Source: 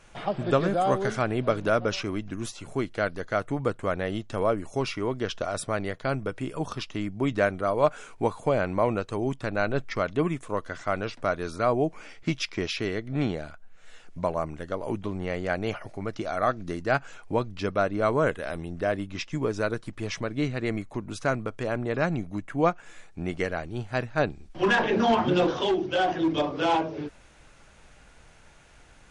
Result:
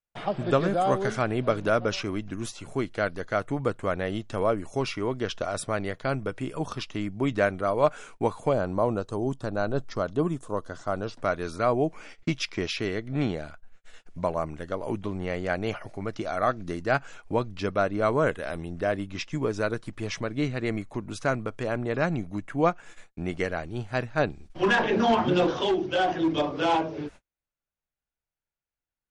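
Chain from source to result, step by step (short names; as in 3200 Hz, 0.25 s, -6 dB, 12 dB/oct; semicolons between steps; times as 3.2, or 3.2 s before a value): gate -44 dBFS, range -41 dB; 8.53–11.19 bell 2200 Hz -15 dB 0.78 oct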